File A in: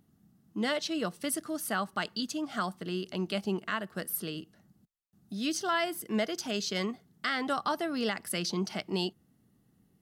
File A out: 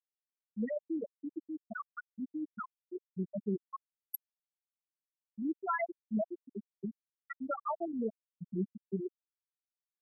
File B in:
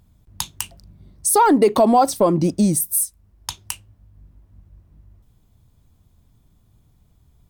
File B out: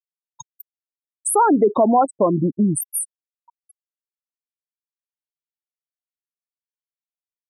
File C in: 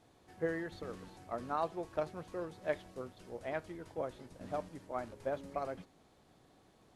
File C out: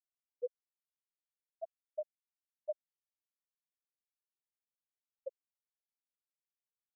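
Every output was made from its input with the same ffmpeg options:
-af "afftfilt=real='re*gte(hypot(re,im),0.224)':imag='im*gte(hypot(re,im),0.224)':win_size=1024:overlap=0.75,volume=-1dB"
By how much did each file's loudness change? -6.5, -0.5, -5.5 LU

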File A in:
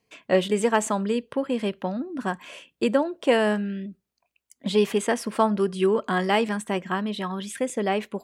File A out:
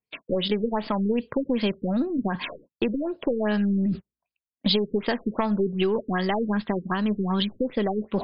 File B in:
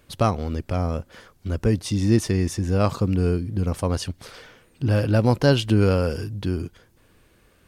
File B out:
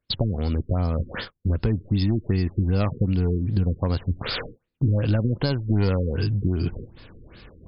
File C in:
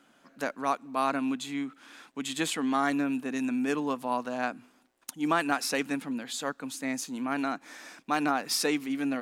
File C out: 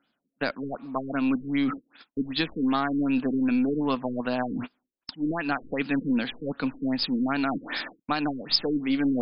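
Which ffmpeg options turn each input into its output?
-af "agate=range=-32dB:threshold=-46dB:ratio=16:detection=peak,highshelf=f=2.8k:g=5.5,aeval=exprs='clip(val(0),-1,0.237)':c=same,areverse,acompressor=mode=upward:threshold=-22dB:ratio=2.5,areverse,alimiter=limit=-15.5dB:level=0:latency=1:release=338,acompressor=threshold=-25dB:ratio=4,aeval=exprs='0.168*(cos(1*acos(clip(val(0)/0.168,-1,1)))-cos(1*PI/2))+0.0075*(cos(4*acos(clip(val(0)/0.168,-1,1)))-cos(4*PI/2))':c=same,bass=f=250:g=4,treble=f=4k:g=13,afftfilt=real='re*lt(b*sr/1024,470*pow(5300/470,0.5+0.5*sin(2*PI*2.6*pts/sr)))':imag='im*lt(b*sr/1024,470*pow(5300/470,0.5+0.5*sin(2*PI*2.6*pts/sr)))':win_size=1024:overlap=0.75,volume=3.5dB"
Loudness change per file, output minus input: -1.0, -1.5, +3.0 LU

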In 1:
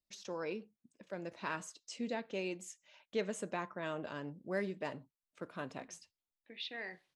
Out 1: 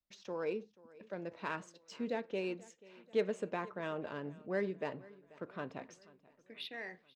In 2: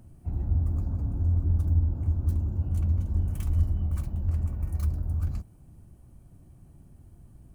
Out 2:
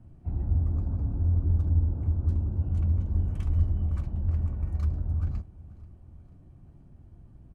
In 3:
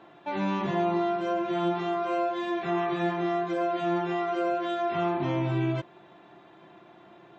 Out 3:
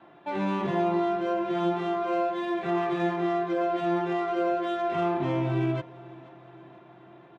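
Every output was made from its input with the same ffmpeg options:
-filter_complex "[0:a]adynamicequalizer=threshold=0.00355:dfrequency=440:dqfactor=4.1:tfrequency=440:tqfactor=4.1:attack=5:release=100:ratio=0.375:range=3:mode=boostabove:tftype=bell,adynamicsmooth=sensitivity=7.5:basefreq=3.9k,asplit=2[a][b];[b]aecho=0:1:485|970|1455|1940:0.0841|0.048|0.0273|0.0156[c];[a][c]amix=inputs=2:normalize=0"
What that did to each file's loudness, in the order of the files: +1.5, 0.0, +0.5 LU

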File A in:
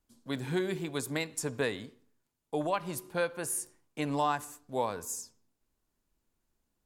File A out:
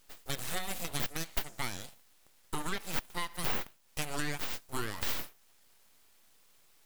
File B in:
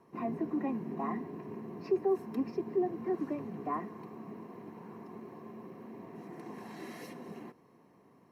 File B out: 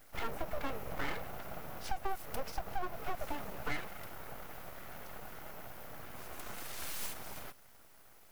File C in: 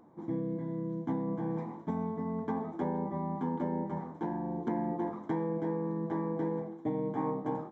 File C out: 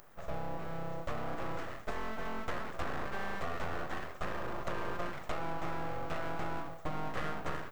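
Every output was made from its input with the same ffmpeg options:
-af "aemphasis=mode=production:type=riaa,aeval=exprs='abs(val(0))':c=same,acompressor=threshold=-36dB:ratio=5,volume=6dB"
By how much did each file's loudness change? -3.0, -5.5, -5.0 LU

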